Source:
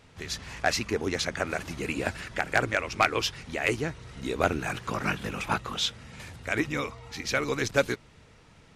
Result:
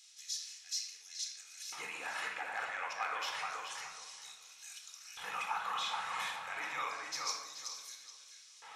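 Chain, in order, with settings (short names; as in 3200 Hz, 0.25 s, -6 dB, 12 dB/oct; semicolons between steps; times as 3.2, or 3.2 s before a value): bell 370 Hz -9.5 dB 0.49 oct; notch 4700 Hz, Q 12; reverse; compressor 6:1, threshold -38 dBFS, peak gain reduction 19 dB; reverse; limiter -36.5 dBFS, peak gain reduction 11.5 dB; LFO high-pass square 0.29 Hz 900–5300 Hz; darkening echo 0.426 s, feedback 24%, low-pass 2800 Hz, level -3 dB; shoebox room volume 2400 m³, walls furnished, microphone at 4 m; gain +3 dB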